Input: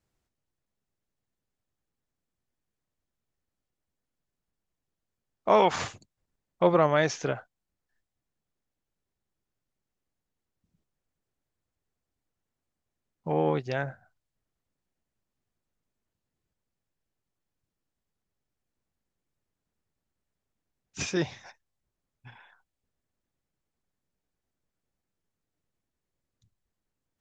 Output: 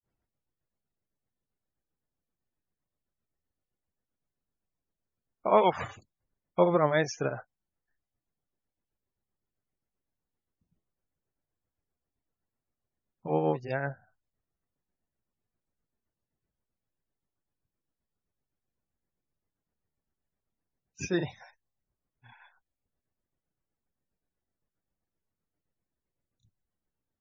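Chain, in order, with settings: grains 0.214 s, grains 7.7/s, spray 35 ms, pitch spread up and down by 0 st; loudest bins only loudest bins 64

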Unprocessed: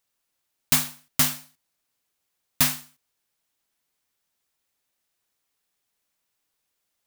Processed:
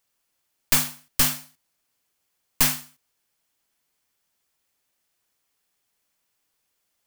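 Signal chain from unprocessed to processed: one-sided fold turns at -18.5 dBFS; notch 3800 Hz, Q 22; gain +3 dB

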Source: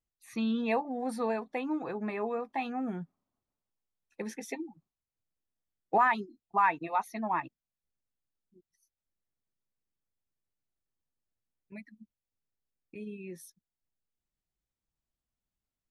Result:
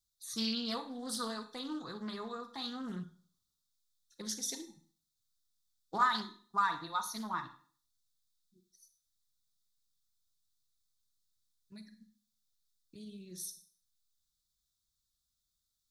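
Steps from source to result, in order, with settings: EQ curve 110 Hz 0 dB, 760 Hz -16 dB, 1300 Hz +2 dB, 2500 Hz -20 dB, 3600 Hz +14 dB, 11000 Hz +9 dB; Schroeder reverb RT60 0.46 s, combs from 33 ms, DRR 8.5 dB; Doppler distortion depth 0.26 ms

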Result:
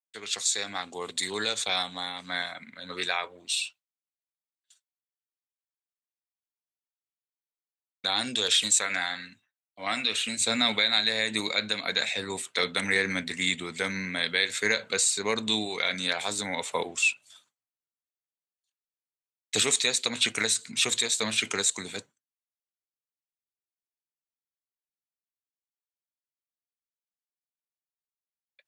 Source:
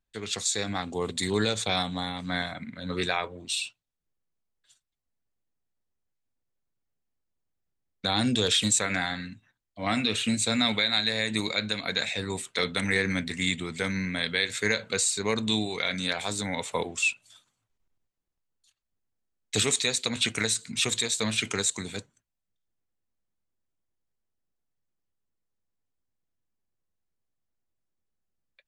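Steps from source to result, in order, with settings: HPF 1000 Hz 6 dB/oct, from 10.4 s 370 Hz; gate with hold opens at -48 dBFS; gain +1.5 dB

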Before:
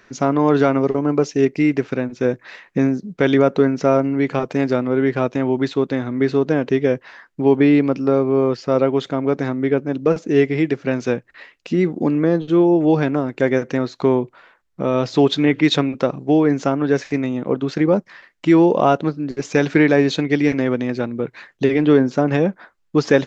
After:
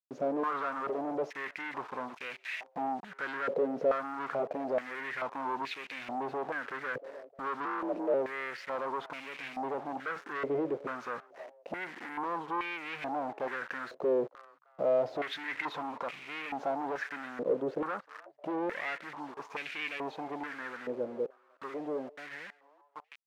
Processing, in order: ending faded out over 6.71 s; in parallel at +2.5 dB: limiter -14.5 dBFS, peak gain reduction 11.5 dB; on the sum: hard clip -14 dBFS, distortion -7 dB; harmonic-percussive split harmonic +4 dB; bit-crush 5-bit; 7.65–8.14 frequency shift +50 Hz; soft clip -15.5 dBFS, distortion -13 dB; on a send: frequency-shifting echo 0.308 s, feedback 32%, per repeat +140 Hz, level -23 dB; on the sum: stepped band-pass 2.3 Hz 510–2400 Hz; gain -2.5 dB

